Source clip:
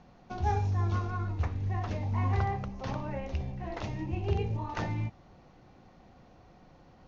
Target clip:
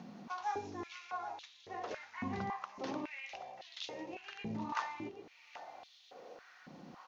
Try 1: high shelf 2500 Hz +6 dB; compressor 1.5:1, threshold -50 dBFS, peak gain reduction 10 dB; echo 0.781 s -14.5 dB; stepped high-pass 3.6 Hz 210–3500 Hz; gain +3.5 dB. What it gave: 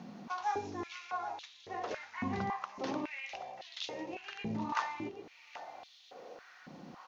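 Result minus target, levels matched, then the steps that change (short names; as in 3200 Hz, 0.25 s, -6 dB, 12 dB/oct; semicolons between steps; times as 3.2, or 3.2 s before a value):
compressor: peak gain reduction -3.5 dB
change: compressor 1.5:1, threshold -60 dBFS, peak gain reduction 13 dB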